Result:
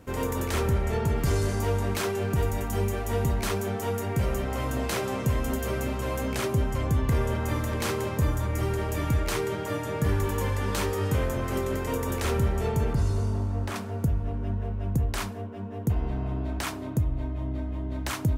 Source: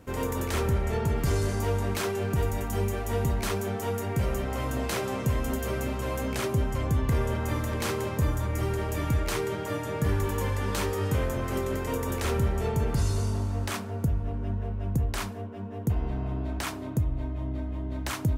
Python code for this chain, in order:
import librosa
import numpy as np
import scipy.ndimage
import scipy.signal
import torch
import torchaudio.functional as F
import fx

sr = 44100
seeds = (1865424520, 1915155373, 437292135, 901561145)

y = fx.high_shelf(x, sr, hz=2200.0, db=-9.5, at=(12.93, 13.76))
y = y * librosa.db_to_amplitude(1.0)